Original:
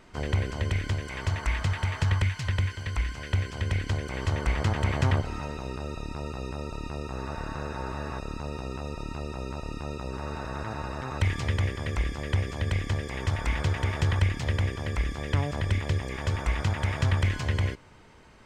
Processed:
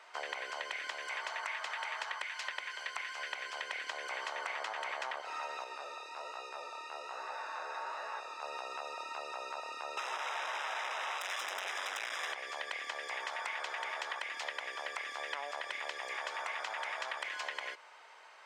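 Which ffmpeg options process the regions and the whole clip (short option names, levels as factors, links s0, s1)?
-filter_complex "[0:a]asettb=1/sr,asplit=3[s0][s1][s2];[s0]atrim=end=5.644[s3];[s1]atrim=start=5.64:end=8.42,asetpts=PTS-STARTPTS,afade=t=in:d=0.004:c=qsin,afade=t=out:st=2.776:d=0.004:c=qsin,equalizer=f=160:w=1.2:g=-4.5,flanger=delay=17.5:depth=7.9:speed=1.2[s4];[s2]atrim=start=8.416[s5];[s3][s4]acrossfade=d=0.004:c1=hsin:c2=qsin[s6];[s6][s5]acrossfade=d=0.004:c1=qsin:c2=hsin,asettb=1/sr,asplit=3[s7][s8][s9];[s7]atrim=end=9.974[s10];[s8]atrim=start=9.97:end=12.33,asetpts=PTS-STARTPTS,afade=t=in:d=0.004:c=qsin,afade=t=out:st=2.356:d=0.004:c=qsin,aeval=exprs='(tanh(28.2*val(0)+0.6)-tanh(0.6))/28.2':c=same,aeval=exprs='0.0562*sin(PI/2*4.47*val(0)/0.0562)':c=same,asuperstop=centerf=4400:order=8:qfactor=5.2[s11];[s9]atrim=start=12.326[s12];[s10][s11]acrossfade=d=0.004:c1=hsin:c2=qsin[s13];[s13][s12]acrossfade=d=0.004:c1=qsin:c2=hsin,highpass=f=650:w=0.5412,highpass=f=650:w=1.3066,highshelf=f=7600:g=-10.5,acompressor=threshold=0.0126:ratio=6,volume=1.33"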